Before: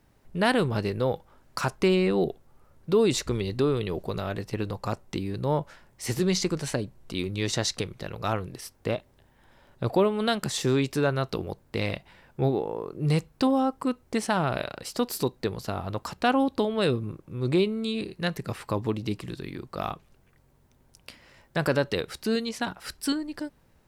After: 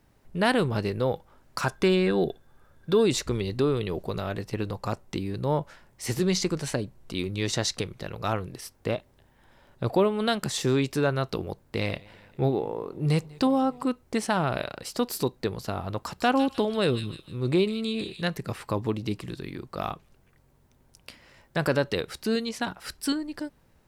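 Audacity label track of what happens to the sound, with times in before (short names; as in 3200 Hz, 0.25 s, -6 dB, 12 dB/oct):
1.660000	3.020000	small resonant body resonances 1600/3500 Hz, height 15 dB -> 18 dB
11.610000	13.870000	warbling echo 0.197 s, feedback 63%, depth 146 cents, level -24 dB
15.950000	18.220000	thin delay 0.153 s, feedback 41%, high-pass 3100 Hz, level -4 dB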